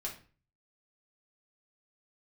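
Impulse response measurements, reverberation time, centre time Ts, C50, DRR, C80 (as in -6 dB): 0.40 s, 20 ms, 9.0 dB, -2.5 dB, 14.5 dB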